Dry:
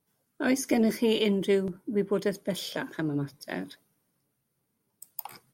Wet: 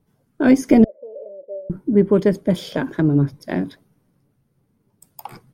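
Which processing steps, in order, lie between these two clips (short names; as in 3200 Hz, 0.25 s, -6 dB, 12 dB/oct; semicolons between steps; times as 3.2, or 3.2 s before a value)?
0.84–1.7 Butterworth band-pass 570 Hz, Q 7.3; tilt -3 dB/oct; gain +7.5 dB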